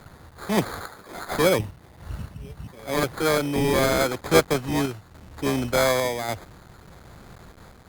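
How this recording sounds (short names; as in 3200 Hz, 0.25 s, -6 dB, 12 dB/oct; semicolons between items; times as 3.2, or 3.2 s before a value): a quantiser's noise floor 8-bit, dither none; random-step tremolo; aliases and images of a low sample rate 2800 Hz, jitter 0%; Opus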